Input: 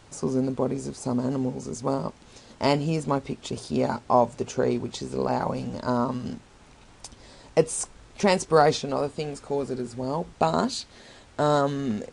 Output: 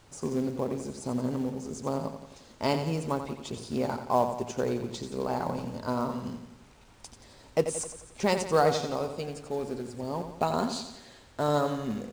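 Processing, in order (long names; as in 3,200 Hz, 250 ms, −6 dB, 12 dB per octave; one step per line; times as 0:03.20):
in parallel at −10.5 dB: log-companded quantiser 4 bits
on the sum: repeating echo 88 ms, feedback 52%, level −9 dB
level −7.5 dB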